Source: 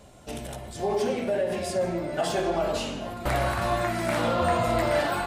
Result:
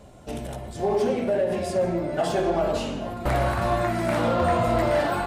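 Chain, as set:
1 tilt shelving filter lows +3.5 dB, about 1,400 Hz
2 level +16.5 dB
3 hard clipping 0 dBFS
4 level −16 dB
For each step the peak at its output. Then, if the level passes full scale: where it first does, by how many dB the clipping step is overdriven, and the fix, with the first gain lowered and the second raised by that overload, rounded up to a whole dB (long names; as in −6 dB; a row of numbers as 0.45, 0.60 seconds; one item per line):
−10.5, +6.0, 0.0, −16.0 dBFS
step 2, 6.0 dB
step 2 +10.5 dB, step 4 −10 dB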